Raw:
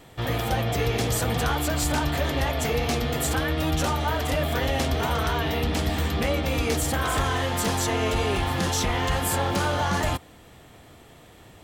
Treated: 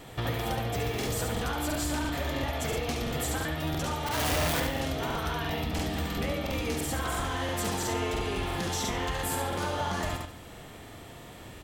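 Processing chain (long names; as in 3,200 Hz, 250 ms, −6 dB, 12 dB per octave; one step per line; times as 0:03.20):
0:04.06–0:04.60: sign of each sample alone
downward compressor 12 to 1, threshold −31 dBFS, peak gain reduction 12 dB
0:00.75–0:01.31: background noise white −56 dBFS
on a send: repeating echo 71 ms, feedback 41%, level −5 dB
on the sum: regular buffer underruns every 0.34 s, samples 2,048, repeat, from 0:00.98
level +2.5 dB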